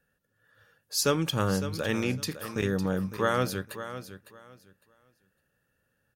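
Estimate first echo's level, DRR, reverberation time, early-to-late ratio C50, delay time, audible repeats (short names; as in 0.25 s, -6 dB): -12.0 dB, none, none, none, 0.556 s, 2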